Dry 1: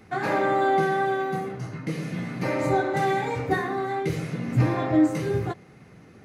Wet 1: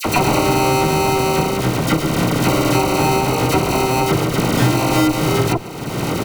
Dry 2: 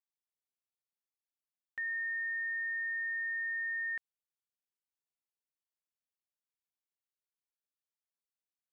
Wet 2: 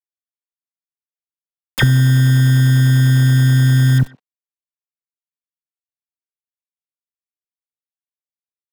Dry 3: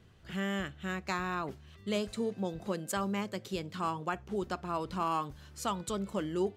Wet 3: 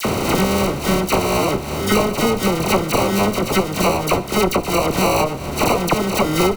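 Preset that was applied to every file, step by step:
compressor on every frequency bin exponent 0.6
high-pass filter 64 Hz 24 dB per octave
parametric band 9,600 Hz +11 dB 0.68 octaves
sample-rate reduction 1,700 Hz, jitter 0%
harmonic generator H 5 −18 dB, 6 −35 dB, 7 −16 dB, 8 −19 dB, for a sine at −8.5 dBFS
all-pass dispersion lows, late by 50 ms, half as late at 1,800 Hz
bit reduction 12 bits
far-end echo of a speakerphone 120 ms, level −21 dB
multiband upward and downward compressor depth 100%
normalise the peak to −2 dBFS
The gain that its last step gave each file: +4.0, +29.5, +17.0 decibels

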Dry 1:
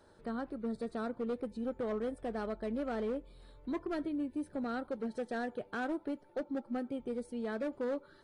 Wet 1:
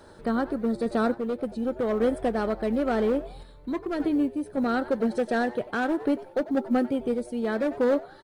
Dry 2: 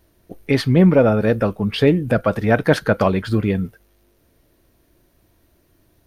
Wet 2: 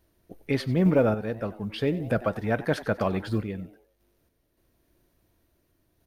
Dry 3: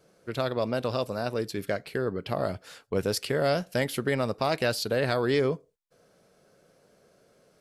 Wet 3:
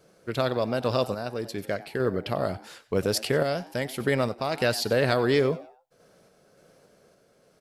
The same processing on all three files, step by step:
echo with shifted repeats 94 ms, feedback 35%, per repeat +120 Hz, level −18 dB
sample-and-hold tremolo
floating-point word with a short mantissa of 6 bits
loudness normalisation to −27 LKFS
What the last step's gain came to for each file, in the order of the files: +13.5, −7.5, +4.0 decibels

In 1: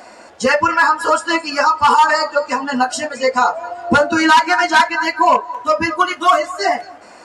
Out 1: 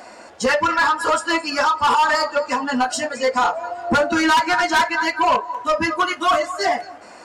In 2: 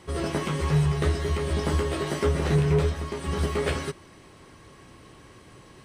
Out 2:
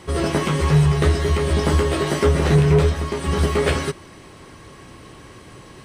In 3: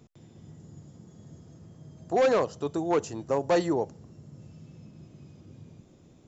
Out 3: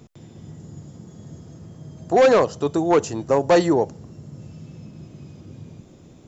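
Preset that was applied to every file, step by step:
soft clipping −11 dBFS
loudness normalisation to −19 LKFS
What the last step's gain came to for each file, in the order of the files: −1.0, +7.5, +8.5 decibels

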